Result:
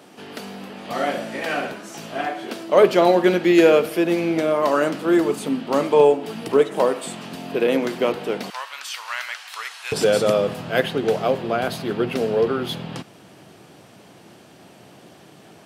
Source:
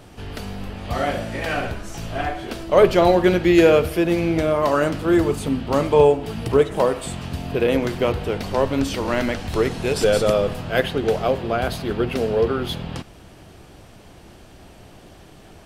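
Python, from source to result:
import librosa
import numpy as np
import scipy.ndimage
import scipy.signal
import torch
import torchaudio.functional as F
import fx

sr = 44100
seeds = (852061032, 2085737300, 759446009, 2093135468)

y = fx.highpass(x, sr, hz=fx.steps((0.0, 190.0), (8.5, 1100.0), (9.92, 130.0)), slope=24)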